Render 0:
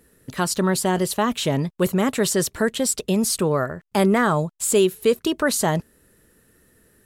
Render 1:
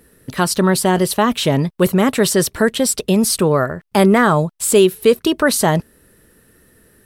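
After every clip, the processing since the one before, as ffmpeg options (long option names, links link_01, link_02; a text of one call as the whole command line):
ffmpeg -i in.wav -af "equalizer=frequency=7000:width=5.2:gain=-6.5,volume=6dB" out.wav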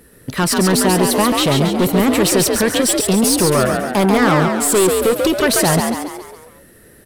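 ffmpeg -i in.wav -filter_complex "[0:a]aeval=exprs='(tanh(5.62*val(0)+0.15)-tanh(0.15))/5.62':channel_layout=same,asplit=2[link_01][link_02];[link_02]asplit=6[link_03][link_04][link_05][link_06][link_07][link_08];[link_03]adelay=138,afreqshift=64,volume=-4dB[link_09];[link_04]adelay=276,afreqshift=128,volume=-10dB[link_10];[link_05]adelay=414,afreqshift=192,volume=-16dB[link_11];[link_06]adelay=552,afreqshift=256,volume=-22.1dB[link_12];[link_07]adelay=690,afreqshift=320,volume=-28.1dB[link_13];[link_08]adelay=828,afreqshift=384,volume=-34.1dB[link_14];[link_09][link_10][link_11][link_12][link_13][link_14]amix=inputs=6:normalize=0[link_15];[link_01][link_15]amix=inputs=2:normalize=0,volume=4dB" out.wav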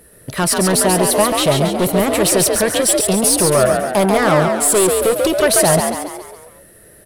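ffmpeg -i in.wav -af "equalizer=frequency=250:width_type=o:width=0.33:gain=-7,equalizer=frequency=630:width_type=o:width=0.33:gain=8,equalizer=frequency=10000:width_type=o:width=0.33:gain=8,volume=-1dB" out.wav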